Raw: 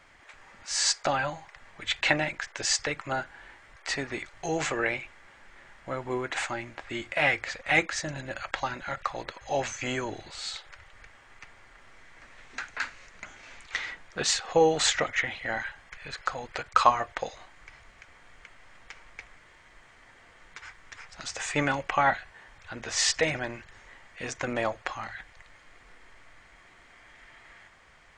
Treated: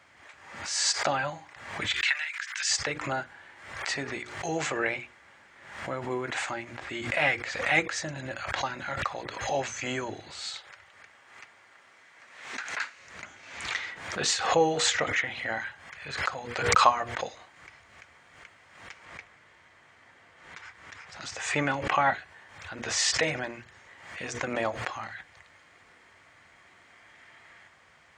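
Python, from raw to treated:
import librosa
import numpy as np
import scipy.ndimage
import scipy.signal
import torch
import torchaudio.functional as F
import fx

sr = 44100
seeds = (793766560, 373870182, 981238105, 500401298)

y = fx.highpass(x, sr, hz=1400.0, slope=24, at=(1.94, 2.71))
y = fx.highpass(y, sr, hz=fx.line((10.54, 190.0), (12.97, 670.0)), slope=6, at=(10.54, 12.97), fade=0.02)
y = fx.high_shelf(y, sr, hz=6500.0, db=-6.0, at=(19.05, 22.1))
y = scipy.signal.sosfilt(scipy.signal.butter(4, 71.0, 'highpass', fs=sr, output='sos'), y)
y = fx.hum_notches(y, sr, base_hz=60, count=8)
y = fx.pre_swell(y, sr, db_per_s=67.0)
y = y * 10.0 ** (-1.0 / 20.0)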